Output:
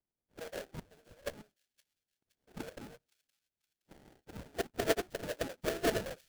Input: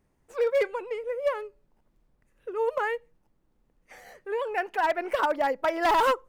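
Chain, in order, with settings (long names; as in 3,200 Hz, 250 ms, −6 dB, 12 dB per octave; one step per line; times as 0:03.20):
envelope filter 670–2,200 Hz, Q 16, down, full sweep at −23 dBFS
sample-rate reduction 1,100 Hz, jitter 20%
delay with a high-pass on its return 518 ms, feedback 43%, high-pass 3,200 Hz, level −21 dB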